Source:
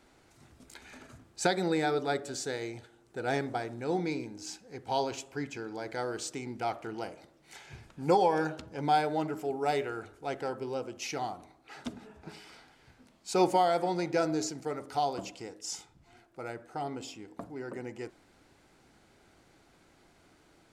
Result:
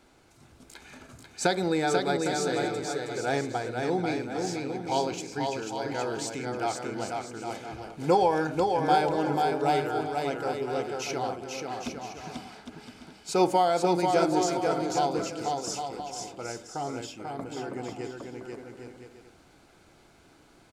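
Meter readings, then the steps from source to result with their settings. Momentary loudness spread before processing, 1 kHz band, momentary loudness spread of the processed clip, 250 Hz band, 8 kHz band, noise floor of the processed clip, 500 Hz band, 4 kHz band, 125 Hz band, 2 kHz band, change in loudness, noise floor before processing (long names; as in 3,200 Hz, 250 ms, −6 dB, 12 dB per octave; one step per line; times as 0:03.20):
21 LU, +4.5 dB, 17 LU, +4.5 dB, +4.5 dB, −58 dBFS, +4.5 dB, +4.5 dB, +4.5 dB, +4.0 dB, +4.0 dB, −63 dBFS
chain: notch filter 1,900 Hz, Q 12
on a send: bouncing-ball delay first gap 490 ms, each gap 0.65×, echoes 5
on the sum: level +2.5 dB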